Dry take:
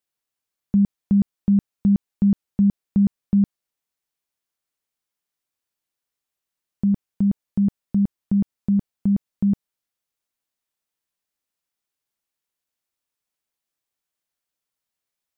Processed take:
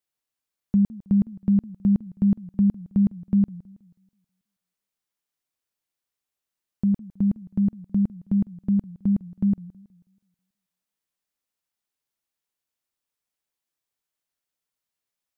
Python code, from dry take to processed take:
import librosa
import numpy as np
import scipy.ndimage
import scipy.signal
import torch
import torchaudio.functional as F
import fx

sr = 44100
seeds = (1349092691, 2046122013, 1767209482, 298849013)

y = fx.echo_warbled(x, sr, ms=161, feedback_pct=39, rate_hz=2.8, cents=215, wet_db=-20.5)
y = y * librosa.db_to_amplitude(-2.0)